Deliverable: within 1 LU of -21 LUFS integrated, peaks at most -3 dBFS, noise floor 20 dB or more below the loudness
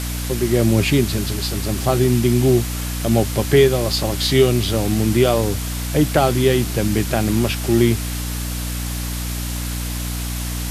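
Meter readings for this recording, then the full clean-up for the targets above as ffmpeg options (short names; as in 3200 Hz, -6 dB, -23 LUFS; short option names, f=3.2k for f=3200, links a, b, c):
hum 60 Hz; harmonics up to 300 Hz; hum level -23 dBFS; noise floor -25 dBFS; noise floor target -39 dBFS; loudness -19.0 LUFS; peak -2.0 dBFS; loudness target -21.0 LUFS
-> -af "bandreject=f=60:t=h:w=4,bandreject=f=120:t=h:w=4,bandreject=f=180:t=h:w=4,bandreject=f=240:t=h:w=4,bandreject=f=300:t=h:w=4"
-af "afftdn=nr=14:nf=-25"
-af "volume=-2dB"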